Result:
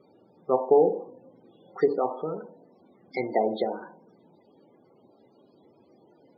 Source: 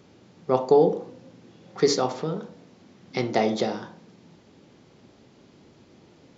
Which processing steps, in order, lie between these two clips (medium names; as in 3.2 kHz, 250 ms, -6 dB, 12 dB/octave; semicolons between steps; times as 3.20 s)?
tone controls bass -12 dB, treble +4 dB; low-pass that closes with the level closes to 1 kHz, closed at -18.5 dBFS; loudest bins only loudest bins 32